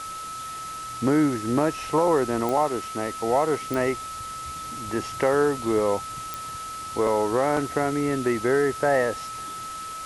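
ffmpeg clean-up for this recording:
-af "adeclick=t=4,bandreject=f=1.3k:w=30,afwtdn=0.01"

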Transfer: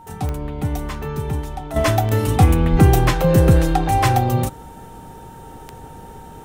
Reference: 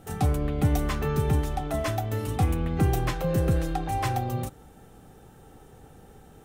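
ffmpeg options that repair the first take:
-filter_complex "[0:a]adeclick=t=4,bandreject=f=920:w=30,asplit=3[a][b][c];[a]afade=t=out:st=2.71:d=0.02[d];[b]highpass=f=140:w=0.5412,highpass=f=140:w=1.3066,afade=t=in:st=2.71:d=0.02,afade=t=out:st=2.83:d=0.02[e];[c]afade=t=in:st=2.83:d=0.02[f];[d][e][f]amix=inputs=3:normalize=0,asetnsamples=n=441:p=0,asendcmd='1.76 volume volume -11dB',volume=0dB"

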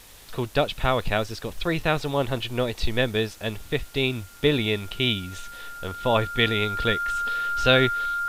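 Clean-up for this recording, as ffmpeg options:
-af "adeclick=t=4,bandreject=f=1.4k:w=30,afwtdn=0.0035"

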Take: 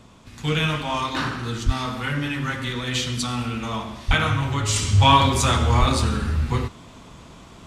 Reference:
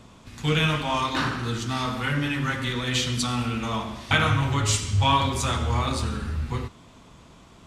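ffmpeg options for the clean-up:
-filter_complex "[0:a]asplit=3[a][b][c];[a]afade=t=out:st=1.65:d=0.02[d];[b]highpass=f=140:w=0.5412,highpass=f=140:w=1.3066,afade=t=in:st=1.65:d=0.02,afade=t=out:st=1.77:d=0.02[e];[c]afade=t=in:st=1.77:d=0.02[f];[d][e][f]amix=inputs=3:normalize=0,asplit=3[g][h][i];[g]afade=t=out:st=4.07:d=0.02[j];[h]highpass=f=140:w=0.5412,highpass=f=140:w=1.3066,afade=t=in:st=4.07:d=0.02,afade=t=out:st=4.19:d=0.02[k];[i]afade=t=in:st=4.19:d=0.02[l];[j][k][l]amix=inputs=3:normalize=0,asplit=3[m][n][o];[m]afade=t=out:st=5.79:d=0.02[p];[n]highpass=f=140:w=0.5412,highpass=f=140:w=1.3066,afade=t=in:st=5.79:d=0.02,afade=t=out:st=5.91:d=0.02[q];[o]afade=t=in:st=5.91:d=0.02[r];[p][q][r]amix=inputs=3:normalize=0,asetnsamples=n=441:p=0,asendcmd='4.76 volume volume -6dB',volume=0dB"

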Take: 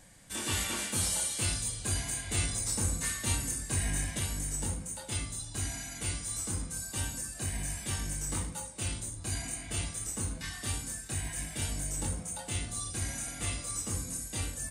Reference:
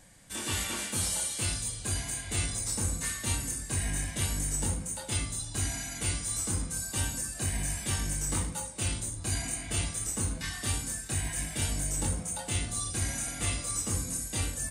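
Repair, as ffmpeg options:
-af "asetnsamples=n=441:p=0,asendcmd='4.19 volume volume 3.5dB',volume=0dB"

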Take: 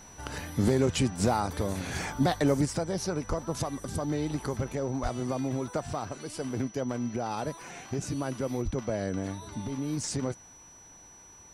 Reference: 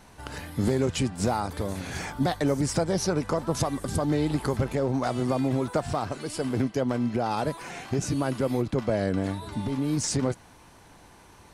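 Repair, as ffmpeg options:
-filter_complex "[0:a]bandreject=f=5.9k:w=30,asplit=3[a][b][c];[a]afade=t=out:st=3.28:d=0.02[d];[b]highpass=f=140:w=0.5412,highpass=f=140:w=1.3066,afade=t=in:st=3.28:d=0.02,afade=t=out:st=3.4:d=0.02[e];[c]afade=t=in:st=3.4:d=0.02[f];[d][e][f]amix=inputs=3:normalize=0,asplit=3[g][h][i];[g]afade=t=out:st=5.02:d=0.02[j];[h]highpass=f=140:w=0.5412,highpass=f=140:w=1.3066,afade=t=in:st=5.02:d=0.02,afade=t=out:st=5.14:d=0.02[k];[i]afade=t=in:st=5.14:d=0.02[l];[j][k][l]amix=inputs=3:normalize=0,asplit=3[m][n][o];[m]afade=t=out:st=8.64:d=0.02[p];[n]highpass=f=140:w=0.5412,highpass=f=140:w=1.3066,afade=t=in:st=8.64:d=0.02,afade=t=out:st=8.76:d=0.02[q];[o]afade=t=in:st=8.76:d=0.02[r];[p][q][r]amix=inputs=3:normalize=0,asetnsamples=n=441:p=0,asendcmd='2.65 volume volume 5.5dB',volume=0dB"

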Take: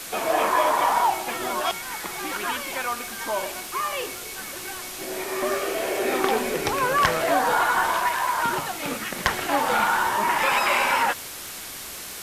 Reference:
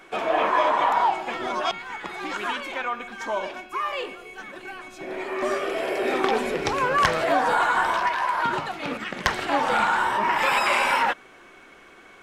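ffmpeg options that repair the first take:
-af "adeclick=t=4,afwtdn=0.018"

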